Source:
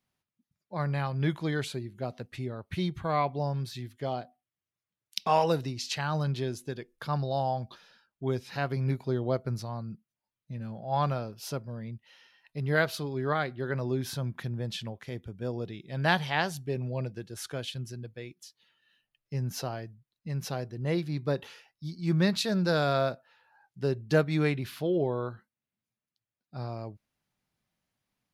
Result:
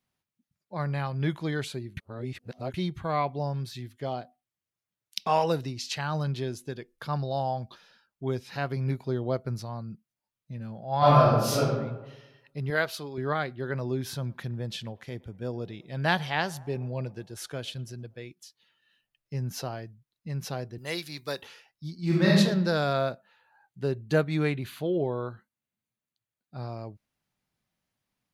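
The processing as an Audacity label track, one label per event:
1.970000	2.740000	reverse
10.980000	11.640000	reverb throw, RT60 1.1 s, DRR -12 dB
12.700000	13.180000	low shelf 220 Hz -10.5 dB
13.950000	18.210000	narrowing echo 0.113 s, feedback 71%, band-pass 800 Hz, level -22 dB
20.780000	21.420000	tilt +4.5 dB/oct
21.980000	22.380000	reverb throw, RT60 0.89 s, DRR -5 dB
22.930000	26.630000	notch 5300 Hz, Q 5.7

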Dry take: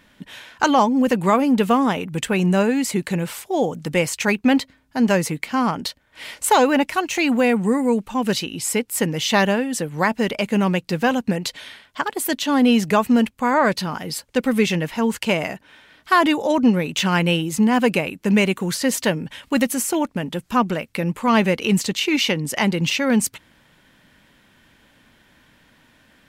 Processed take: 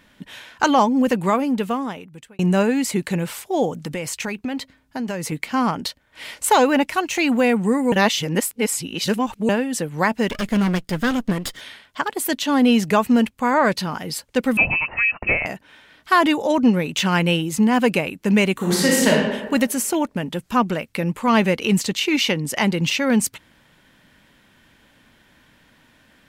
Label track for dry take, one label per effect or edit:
1.010000	2.390000	fade out
3.830000	5.320000	compressor, threshold -23 dBFS
7.920000	9.490000	reverse
10.290000	11.610000	minimum comb delay 0.59 ms
14.570000	15.460000	inverted band carrier 2800 Hz
18.530000	19.090000	reverb throw, RT60 1.2 s, DRR -4.5 dB

